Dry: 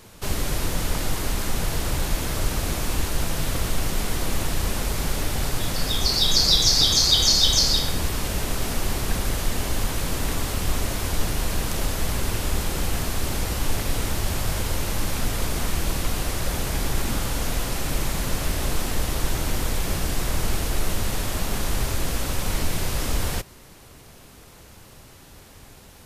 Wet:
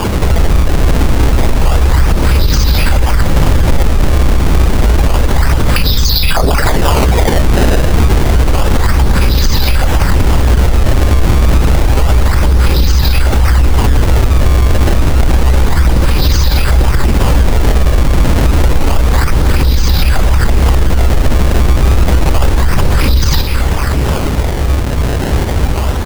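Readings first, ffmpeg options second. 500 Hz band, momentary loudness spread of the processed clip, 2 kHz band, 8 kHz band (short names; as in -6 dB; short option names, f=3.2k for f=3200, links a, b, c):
+14.5 dB, 3 LU, +12.0 dB, +2.5 dB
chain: -filter_complex "[0:a]acompressor=threshold=-35dB:ratio=4,lowpass=f=4.9k:t=q:w=11,equalizer=f=64:w=3.4:g=10.5,aphaser=in_gain=1:out_gain=1:delay=1.5:decay=0.44:speed=0.87:type=sinusoidal,highshelf=f=2.9k:g=-11.5,acrossover=split=170[a][b];[b]acompressor=threshold=-35dB:ratio=10[c];[a][c]amix=inputs=2:normalize=0,asuperstop=centerf=680:order=4:qfactor=6,aecho=1:1:45|343|515:0.141|0.188|0.188,acrusher=samples=22:mix=1:aa=0.000001:lfo=1:lforange=35.2:lforate=0.29,alimiter=level_in=30dB:limit=-1dB:release=50:level=0:latency=1,volume=-1dB"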